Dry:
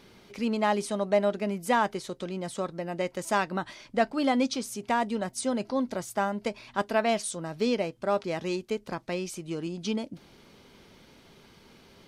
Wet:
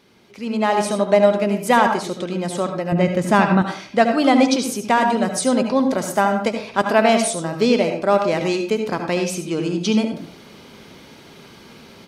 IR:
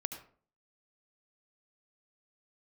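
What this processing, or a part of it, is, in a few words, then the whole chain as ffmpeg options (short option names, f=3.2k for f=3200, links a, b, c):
far laptop microphone: -filter_complex "[1:a]atrim=start_sample=2205[a];[0:a][a]afir=irnorm=-1:irlink=0,highpass=f=100:p=1,dynaudnorm=f=430:g=3:m=12dB,asettb=1/sr,asplit=3[b][c][d];[b]atrim=end=2.924[e];[c]atrim=start=2.92:end=3.62,asetpts=PTS-STARTPTS,afade=t=in:d=0.004:c=qsin,afade=t=out:st=0.696:d=0.004:c=qsin,bass=f=250:g=12,treble=f=4k:g=-7[f];[d]atrim=start=3.616[g];[e][f]acrossfade=d=0.004:c1=hsin:c2=qsin[h];[h][g]acrossfade=d=0.004:c1=qsin:c2=hsin"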